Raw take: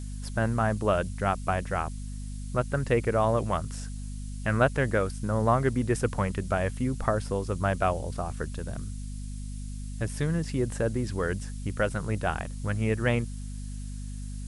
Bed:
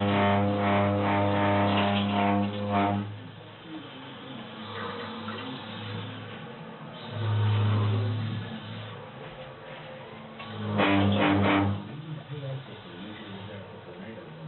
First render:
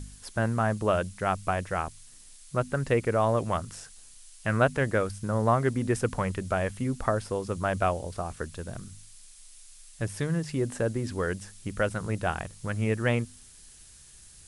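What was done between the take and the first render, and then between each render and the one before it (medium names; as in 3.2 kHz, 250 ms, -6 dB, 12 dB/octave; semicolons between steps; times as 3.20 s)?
de-hum 50 Hz, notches 5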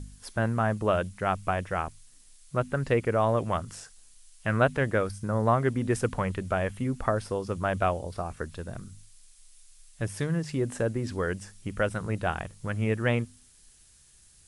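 noise print and reduce 6 dB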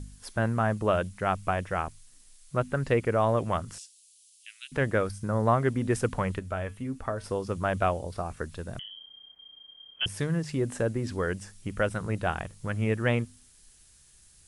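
3.78–4.72 s: steep high-pass 2.7 kHz; 6.39–7.24 s: feedback comb 89 Hz, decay 0.21 s, harmonics odd; 8.79–10.06 s: frequency inversion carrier 3.2 kHz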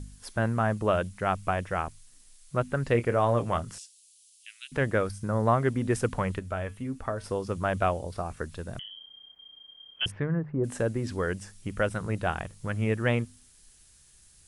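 2.92–3.75 s: doubling 25 ms -10.5 dB; 10.10–10.63 s: low-pass 2.7 kHz -> 1.1 kHz 24 dB/octave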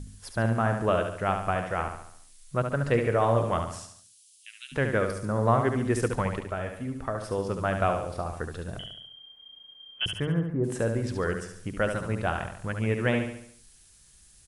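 feedback delay 71 ms, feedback 48%, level -6.5 dB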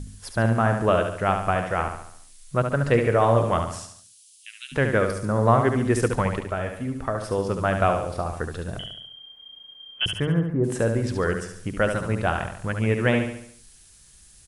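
trim +4.5 dB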